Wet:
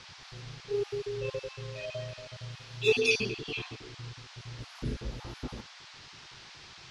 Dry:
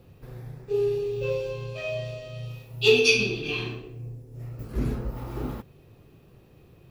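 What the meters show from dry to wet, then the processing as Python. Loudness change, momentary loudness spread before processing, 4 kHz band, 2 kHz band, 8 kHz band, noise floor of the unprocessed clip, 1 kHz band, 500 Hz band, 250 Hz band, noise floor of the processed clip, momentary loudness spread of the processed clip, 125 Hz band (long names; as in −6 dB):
−7.5 dB, 21 LU, −7.0 dB, −6.0 dB, −6.5 dB, −55 dBFS, −4.5 dB, −7.0 dB, −7.5 dB, −51 dBFS, 21 LU, −7.0 dB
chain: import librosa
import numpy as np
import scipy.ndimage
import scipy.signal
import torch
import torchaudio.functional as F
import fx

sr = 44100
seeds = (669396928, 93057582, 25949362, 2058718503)

y = fx.spec_dropout(x, sr, seeds[0], share_pct=29)
y = fx.dmg_noise_band(y, sr, seeds[1], low_hz=720.0, high_hz=5300.0, level_db=-46.0)
y = scipy.signal.sosfilt(scipy.signal.ellip(4, 1.0, 40, 11000.0, 'lowpass', fs=sr, output='sos'), y)
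y = F.gain(torch.from_numpy(y), -4.5).numpy()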